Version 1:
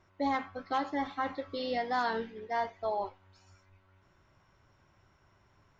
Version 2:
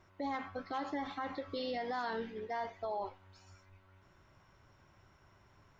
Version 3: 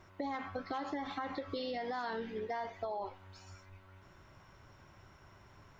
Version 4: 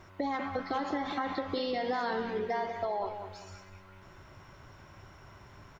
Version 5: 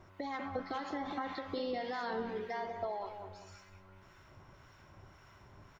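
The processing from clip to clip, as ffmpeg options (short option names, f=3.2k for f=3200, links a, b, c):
-af "alimiter=level_in=7.5dB:limit=-24dB:level=0:latency=1:release=92,volume=-7.5dB,volume=1.5dB"
-af "acompressor=threshold=-41dB:ratio=6,volume=5.5dB"
-filter_complex "[0:a]asplit=2[a][b];[b]adelay=196,lowpass=f=4.1k:p=1,volume=-8dB,asplit=2[c][d];[d]adelay=196,lowpass=f=4.1k:p=1,volume=0.34,asplit=2[e][f];[f]adelay=196,lowpass=f=4.1k:p=1,volume=0.34,asplit=2[g][h];[h]adelay=196,lowpass=f=4.1k:p=1,volume=0.34[i];[a][c][e][g][i]amix=inputs=5:normalize=0,volume=5.5dB"
-filter_complex "[0:a]acrossover=split=1100[a][b];[a]aeval=exprs='val(0)*(1-0.5/2+0.5/2*cos(2*PI*1.8*n/s))':c=same[c];[b]aeval=exprs='val(0)*(1-0.5/2-0.5/2*cos(2*PI*1.8*n/s))':c=same[d];[c][d]amix=inputs=2:normalize=0,volume=-3dB"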